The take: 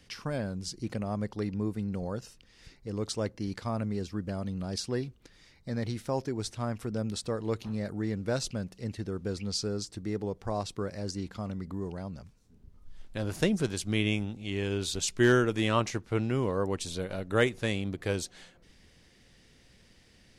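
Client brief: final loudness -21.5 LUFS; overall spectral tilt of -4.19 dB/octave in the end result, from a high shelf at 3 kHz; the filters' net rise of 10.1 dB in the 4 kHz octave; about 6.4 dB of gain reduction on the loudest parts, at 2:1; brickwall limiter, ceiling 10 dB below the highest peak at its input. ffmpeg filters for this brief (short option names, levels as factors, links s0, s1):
-af "highshelf=f=3000:g=8.5,equalizer=f=4000:t=o:g=6,acompressor=threshold=0.0355:ratio=2,volume=4.47,alimiter=limit=0.376:level=0:latency=1"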